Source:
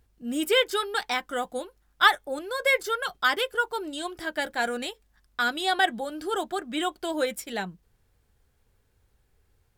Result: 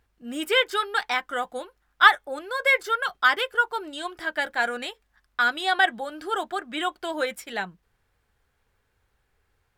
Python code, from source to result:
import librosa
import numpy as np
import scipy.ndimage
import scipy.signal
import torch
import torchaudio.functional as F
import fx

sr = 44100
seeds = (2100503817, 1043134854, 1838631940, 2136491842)

y = fx.peak_eq(x, sr, hz=1500.0, db=10.0, octaves=2.8)
y = F.gain(torch.from_numpy(y), -5.5).numpy()